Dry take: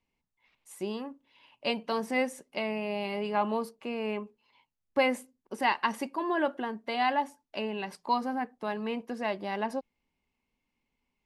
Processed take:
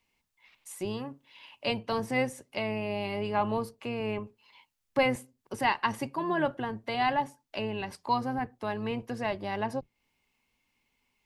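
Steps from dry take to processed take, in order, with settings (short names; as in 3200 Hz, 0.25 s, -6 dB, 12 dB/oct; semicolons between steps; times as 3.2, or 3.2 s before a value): octaver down 1 oct, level -6 dB; mismatched tape noise reduction encoder only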